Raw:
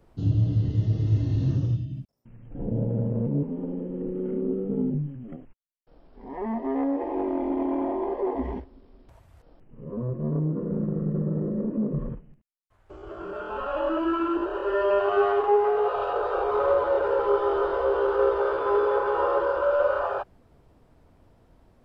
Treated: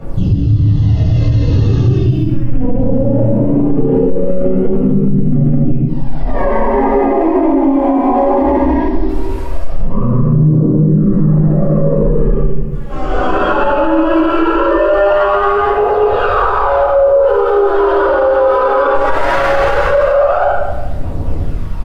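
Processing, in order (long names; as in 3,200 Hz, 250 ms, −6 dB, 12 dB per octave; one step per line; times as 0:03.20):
0:18.94–0:19.87: lower of the sound and its delayed copy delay 1.4 ms
phase shifter 0.19 Hz, delay 4.1 ms, feedback 79%
loudspeakers that aren't time-aligned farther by 47 metres −5 dB, 73 metres −1 dB
downward compressor 5 to 1, threshold −29 dBFS, peak gain reduction 20 dB
0:16.82–0:17.23: parametric band 2,400 Hz −13.5 dB 2.2 octaves
rectangular room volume 770 cubic metres, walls mixed, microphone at 6.9 metres
boost into a limiter +12 dB
level −2.5 dB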